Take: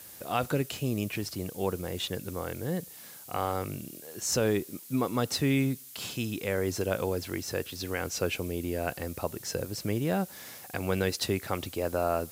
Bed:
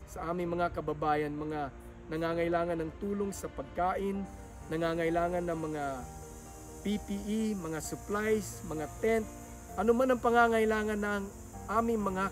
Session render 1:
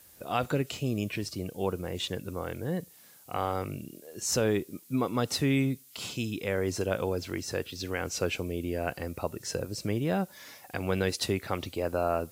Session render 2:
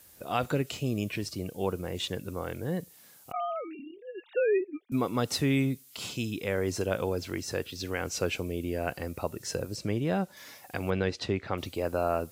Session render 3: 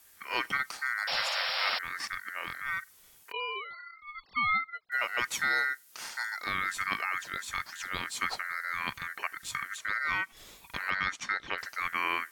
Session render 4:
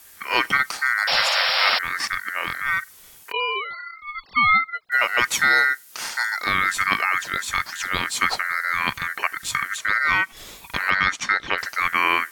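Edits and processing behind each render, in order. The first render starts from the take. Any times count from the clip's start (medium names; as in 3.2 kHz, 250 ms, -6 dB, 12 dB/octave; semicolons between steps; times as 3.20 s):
noise print and reduce 8 dB
3.32–4.92 s: formants replaced by sine waves; 9.76–10.37 s: treble shelf 11 kHz -12 dB; 10.90–11.58 s: distance through air 150 m
ring modulator 1.7 kHz; 1.07–1.79 s: painted sound noise 500–5600 Hz -32 dBFS
trim +11 dB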